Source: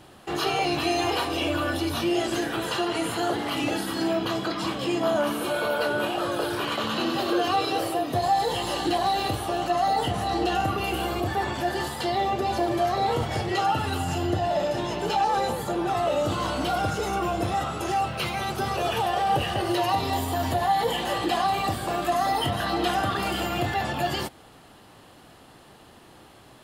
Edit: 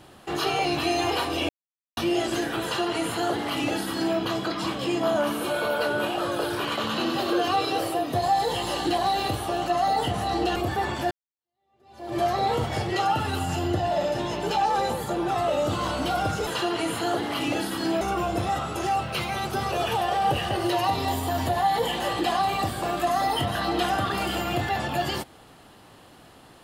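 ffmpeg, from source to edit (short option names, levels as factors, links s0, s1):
-filter_complex "[0:a]asplit=7[s0][s1][s2][s3][s4][s5][s6];[s0]atrim=end=1.49,asetpts=PTS-STARTPTS,afade=t=out:st=1.486:d=0.004:c=hsin[s7];[s1]atrim=start=1.49:end=1.97,asetpts=PTS-STARTPTS,volume=0[s8];[s2]atrim=start=1.97:end=10.562,asetpts=PTS-STARTPTS,afade=t=in:d=0.004:c=hsin[s9];[s3]atrim=start=11.148:end=11.7,asetpts=PTS-STARTPTS,afade=t=out:st=0.548:d=0.004:c=hsin[s10];[s4]atrim=start=11.7:end=17.062,asetpts=PTS-STARTPTS,afade=t=in:d=1.07:c=exp[s11];[s5]atrim=start=2.628:end=4.172[s12];[s6]atrim=start=17.058[s13];[s7][s8][s9]concat=n=3:v=0:a=1[s14];[s10][s11]concat=n=2:v=0:a=1[s15];[s14][s15]acrossfade=d=0.004:c1=hsin:c2=hsin[s16];[s16][s12]acrossfade=d=0.004:c1=hsin:c2=hsin[s17];[s17][s13]acrossfade=d=0.004:c1=hsin:c2=hsin"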